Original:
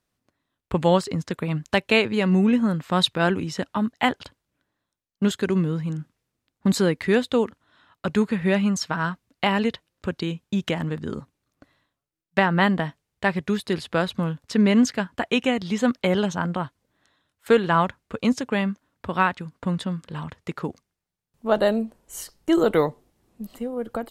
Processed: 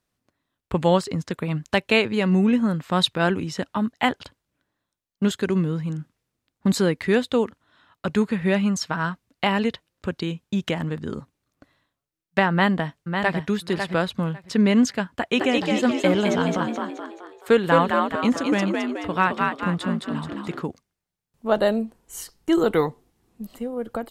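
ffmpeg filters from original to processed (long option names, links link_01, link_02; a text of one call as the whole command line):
ffmpeg -i in.wav -filter_complex "[0:a]asplit=2[link_01][link_02];[link_02]afade=type=in:start_time=12.51:duration=0.01,afade=type=out:start_time=13.42:duration=0.01,aecho=0:1:550|1100|1650:0.501187|0.0751781|0.0112767[link_03];[link_01][link_03]amix=inputs=2:normalize=0,asplit=3[link_04][link_05][link_06];[link_04]afade=type=out:start_time=15.37:duration=0.02[link_07];[link_05]asplit=7[link_08][link_09][link_10][link_11][link_12][link_13][link_14];[link_09]adelay=214,afreqshift=53,volume=-3dB[link_15];[link_10]adelay=428,afreqshift=106,volume=-9.6dB[link_16];[link_11]adelay=642,afreqshift=159,volume=-16.1dB[link_17];[link_12]adelay=856,afreqshift=212,volume=-22.7dB[link_18];[link_13]adelay=1070,afreqshift=265,volume=-29.2dB[link_19];[link_14]adelay=1284,afreqshift=318,volume=-35.8dB[link_20];[link_08][link_15][link_16][link_17][link_18][link_19][link_20]amix=inputs=7:normalize=0,afade=type=in:start_time=15.37:duration=0.02,afade=type=out:start_time=20.6:duration=0.02[link_21];[link_06]afade=type=in:start_time=20.6:duration=0.02[link_22];[link_07][link_21][link_22]amix=inputs=3:normalize=0,asettb=1/sr,asplit=3[link_23][link_24][link_25];[link_23]atrim=end=21.844[link_26];[link_24]atrim=start=21.84:end=23.43,asetpts=PTS-STARTPTS,afade=type=in:duration=0.004:curve=qsin,afade=type=out:start_time=1.586:duration=0.004:curve=qsin,bandreject=frequency=590:width=5.4[link_27];[link_25]atrim=start=23.426[link_28];[link_26][link_27]acrossfade=duration=0.004:curve1=hsin:curve2=qsin[link_29];[link_29][link_28]acrossfade=duration=0.004:curve1=qsin:curve2=hsin" out.wav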